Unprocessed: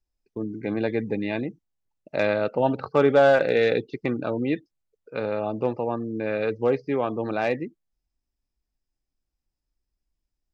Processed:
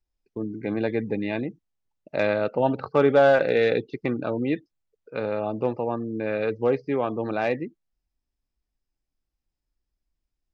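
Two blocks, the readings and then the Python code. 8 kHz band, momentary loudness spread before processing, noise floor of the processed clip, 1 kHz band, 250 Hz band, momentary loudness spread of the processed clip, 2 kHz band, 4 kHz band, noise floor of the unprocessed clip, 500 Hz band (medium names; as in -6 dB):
no reading, 13 LU, -84 dBFS, 0.0 dB, 0.0 dB, 13 LU, -0.5 dB, -1.5 dB, -84 dBFS, 0.0 dB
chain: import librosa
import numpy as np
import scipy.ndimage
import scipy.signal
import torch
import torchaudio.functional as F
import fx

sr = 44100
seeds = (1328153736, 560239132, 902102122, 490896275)

y = fx.air_absorb(x, sr, metres=52.0)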